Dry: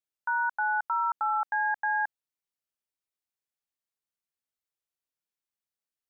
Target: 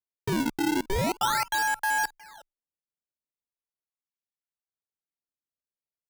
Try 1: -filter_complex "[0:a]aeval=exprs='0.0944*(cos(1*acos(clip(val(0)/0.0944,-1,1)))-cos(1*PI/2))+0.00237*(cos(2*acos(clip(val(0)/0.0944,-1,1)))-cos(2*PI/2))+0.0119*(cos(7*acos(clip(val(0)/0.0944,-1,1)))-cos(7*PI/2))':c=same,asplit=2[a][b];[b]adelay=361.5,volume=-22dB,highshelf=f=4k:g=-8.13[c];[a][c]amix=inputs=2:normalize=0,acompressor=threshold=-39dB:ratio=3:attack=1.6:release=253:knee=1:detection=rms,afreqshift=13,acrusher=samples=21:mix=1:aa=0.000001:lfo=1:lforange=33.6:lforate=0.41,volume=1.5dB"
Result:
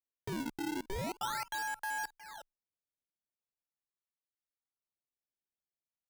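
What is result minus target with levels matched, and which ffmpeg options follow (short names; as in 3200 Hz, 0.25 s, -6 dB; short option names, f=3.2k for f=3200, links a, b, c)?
compressor: peak gain reduction +11.5 dB
-filter_complex "[0:a]aeval=exprs='0.0944*(cos(1*acos(clip(val(0)/0.0944,-1,1)))-cos(1*PI/2))+0.00237*(cos(2*acos(clip(val(0)/0.0944,-1,1)))-cos(2*PI/2))+0.0119*(cos(7*acos(clip(val(0)/0.0944,-1,1)))-cos(7*PI/2))':c=same,asplit=2[a][b];[b]adelay=361.5,volume=-22dB,highshelf=f=4k:g=-8.13[c];[a][c]amix=inputs=2:normalize=0,afreqshift=13,acrusher=samples=21:mix=1:aa=0.000001:lfo=1:lforange=33.6:lforate=0.41,volume=1.5dB"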